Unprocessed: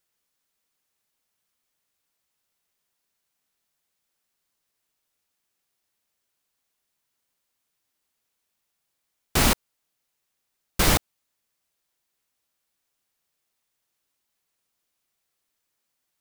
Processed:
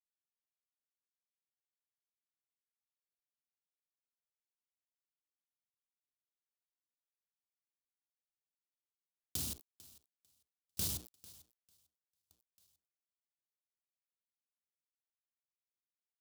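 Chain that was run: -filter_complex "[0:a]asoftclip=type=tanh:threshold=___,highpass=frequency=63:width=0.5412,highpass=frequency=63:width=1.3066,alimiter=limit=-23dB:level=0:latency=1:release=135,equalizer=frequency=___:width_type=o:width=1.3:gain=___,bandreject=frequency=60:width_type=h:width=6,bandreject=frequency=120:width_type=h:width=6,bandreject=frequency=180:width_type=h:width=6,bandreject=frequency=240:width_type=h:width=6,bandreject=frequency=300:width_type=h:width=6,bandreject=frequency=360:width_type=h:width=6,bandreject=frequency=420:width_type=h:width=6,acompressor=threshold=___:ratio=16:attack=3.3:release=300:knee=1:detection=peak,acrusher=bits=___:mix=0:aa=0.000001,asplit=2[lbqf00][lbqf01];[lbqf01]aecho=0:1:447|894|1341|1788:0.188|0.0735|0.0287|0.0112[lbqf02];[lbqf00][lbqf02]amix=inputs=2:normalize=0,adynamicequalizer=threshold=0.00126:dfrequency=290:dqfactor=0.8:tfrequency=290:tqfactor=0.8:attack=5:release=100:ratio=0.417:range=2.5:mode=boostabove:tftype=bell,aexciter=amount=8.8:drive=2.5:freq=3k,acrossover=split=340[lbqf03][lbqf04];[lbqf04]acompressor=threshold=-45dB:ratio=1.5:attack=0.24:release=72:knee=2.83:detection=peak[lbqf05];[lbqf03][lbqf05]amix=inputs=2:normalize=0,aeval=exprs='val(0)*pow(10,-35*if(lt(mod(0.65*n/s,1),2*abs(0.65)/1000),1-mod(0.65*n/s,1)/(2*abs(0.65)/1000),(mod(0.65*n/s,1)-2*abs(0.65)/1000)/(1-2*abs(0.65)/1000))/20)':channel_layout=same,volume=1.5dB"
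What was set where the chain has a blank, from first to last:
-19dB, 80, 11, -37dB, 8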